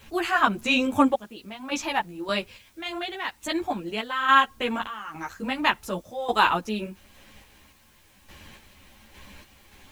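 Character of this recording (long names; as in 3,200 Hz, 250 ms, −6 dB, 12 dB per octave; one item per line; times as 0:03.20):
sample-and-hold tremolo, depth 85%
a quantiser's noise floor 12 bits, dither triangular
a shimmering, thickened sound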